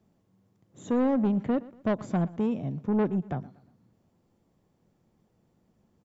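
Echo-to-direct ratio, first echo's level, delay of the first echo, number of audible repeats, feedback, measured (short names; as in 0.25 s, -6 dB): -19.5 dB, -20.0 dB, 0.119 s, 2, 38%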